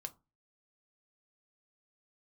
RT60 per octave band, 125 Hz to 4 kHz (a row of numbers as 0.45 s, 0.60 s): 0.45 s, 0.40 s, 0.25 s, 0.25 s, 0.20 s, 0.15 s